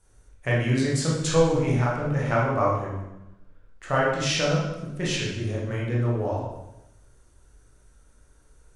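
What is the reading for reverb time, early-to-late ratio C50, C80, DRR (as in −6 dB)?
0.95 s, 0.5 dB, 4.0 dB, −5.5 dB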